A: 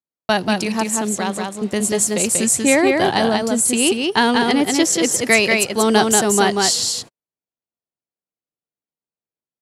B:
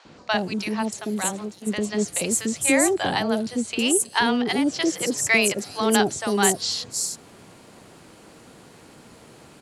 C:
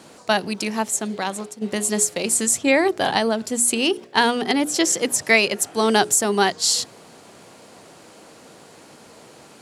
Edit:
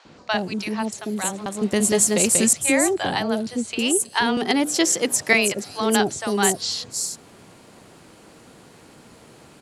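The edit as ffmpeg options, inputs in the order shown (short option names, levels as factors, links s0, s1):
-filter_complex "[1:a]asplit=3[s0][s1][s2];[s0]atrim=end=1.462[s3];[0:a]atrim=start=1.458:end=2.532[s4];[s1]atrim=start=2.528:end=4.372[s5];[2:a]atrim=start=4.368:end=5.332[s6];[s2]atrim=start=5.328[s7];[s3][s4]acrossfade=d=0.004:c1=hsin:c2=hsin[s8];[s8][s5]acrossfade=d=0.004:c1=hsin:c2=hsin[s9];[s9][s6]acrossfade=d=0.004:c1=hsin:c2=hsin[s10];[s10][s7]acrossfade=d=0.004:c1=hsin:c2=hsin"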